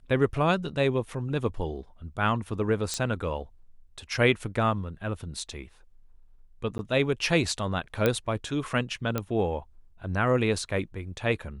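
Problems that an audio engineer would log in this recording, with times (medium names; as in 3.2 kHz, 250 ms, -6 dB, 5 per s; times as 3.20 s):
2.94 s: pop -15 dBFS
6.78–6.79 s: dropout 11 ms
8.06 s: pop -10 dBFS
9.18 s: pop -14 dBFS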